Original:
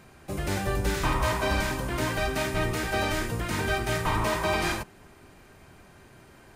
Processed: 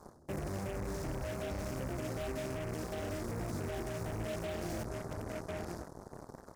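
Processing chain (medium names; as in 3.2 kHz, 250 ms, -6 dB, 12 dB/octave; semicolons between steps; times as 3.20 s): high-pass 51 Hz 12 dB/octave; treble shelf 2.9 kHz -7.5 dB; hum notches 60/120/180 Hz; feedback delay 1047 ms, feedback 17%, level -20 dB; reverberation, pre-delay 36 ms, DRR 16.5 dB; in parallel at -9 dB: word length cut 6-bit, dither none; on the sum: elliptic band-stop 660–5300 Hz; treble shelf 6.8 kHz -5.5 dB; reverse; compression 6:1, threshold -39 dBFS, peak gain reduction 15.5 dB; reverse; peak limiter -40 dBFS, peak gain reduction 9.5 dB; Chebyshev shaper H 7 -13 dB, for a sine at -40 dBFS; trim +8.5 dB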